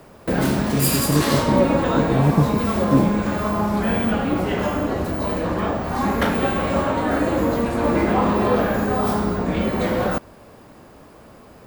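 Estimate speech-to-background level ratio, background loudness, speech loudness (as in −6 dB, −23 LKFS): −1.5 dB, −21.0 LKFS, −22.5 LKFS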